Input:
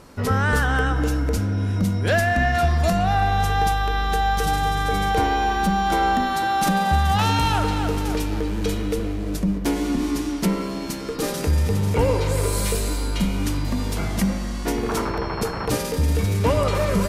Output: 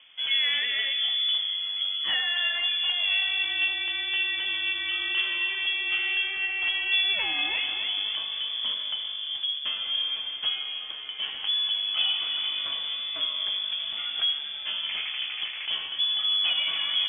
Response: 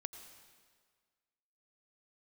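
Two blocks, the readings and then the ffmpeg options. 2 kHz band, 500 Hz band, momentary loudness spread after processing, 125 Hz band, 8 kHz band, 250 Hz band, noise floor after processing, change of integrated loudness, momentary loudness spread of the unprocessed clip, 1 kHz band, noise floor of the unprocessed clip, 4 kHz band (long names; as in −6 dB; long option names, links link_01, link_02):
−1.0 dB, −27.0 dB, 7 LU, below −40 dB, below −40 dB, −31.5 dB, −36 dBFS, −3.0 dB, 6 LU, −23.5 dB, −28 dBFS, +10.5 dB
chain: -af "flanger=delay=8.2:depth=7.2:regen=60:speed=0.36:shape=triangular,lowpass=frequency=3000:width_type=q:width=0.5098,lowpass=frequency=3000:width_type=q:width=0.6013,lowpass=frequency=3000:width_type=q:width=0.9,lowpass=frequency=3000:width_type=q:width=2.563,afreqshift=-3500,volume=-3dB"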